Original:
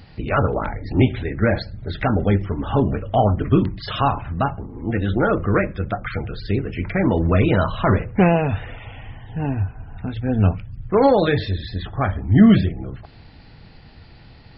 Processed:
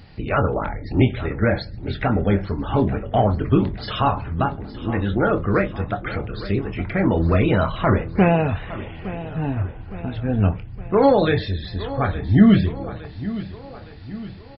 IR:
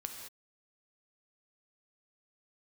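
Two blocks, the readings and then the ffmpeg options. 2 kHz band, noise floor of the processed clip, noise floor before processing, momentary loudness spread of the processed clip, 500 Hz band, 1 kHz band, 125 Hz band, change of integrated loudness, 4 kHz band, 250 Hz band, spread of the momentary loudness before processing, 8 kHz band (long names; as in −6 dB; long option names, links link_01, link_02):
−0.5 dB, −38 dBFS, −45 dBFS, 14 LU, −0.5 dB, −0.5 dB, −1.0 dB, −1.0 dB, −0.5 dB, −0.5 dB, 13 LU, can't be measured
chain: -filter_complex "[0:a]asplit=2[link_01][link_02];[link_02]adelay=25,volume=-12dB[link_03];[link_01][link_03]amix=inputs=2:normalize=0,aecho=1:1:864|1728|2592|3456|4320:0.178|0.0925|0.0481|0.025|0.013,volume=-1dB"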